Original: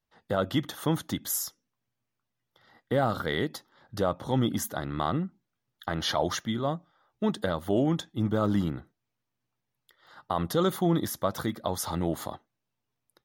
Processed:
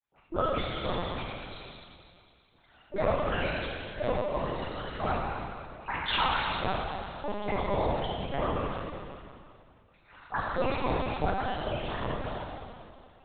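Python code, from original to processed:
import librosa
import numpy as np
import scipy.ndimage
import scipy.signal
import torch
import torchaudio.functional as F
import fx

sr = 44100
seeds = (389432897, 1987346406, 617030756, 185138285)

y = fx.spec_delay(x, sr, highs='late', ms=125)
y = scipy.signal.sosfilt(scipy.signal.butter(2, 480.0, 'highpass', fs=sr, output='sos'), y)
y = fx.granulator(y, sr, seeds[0], grain_ms=100.0, per_s=20.0, spray_ms=30.0, spread_st=7)
y = fx.rev_schroeder(y, sr, rt60_s=2.4, comb_ms=30, drr_db=-2.5)
y = fx.lpc_vocoder(y, sr, seeds[1], excitation='pitch_kept', order=10)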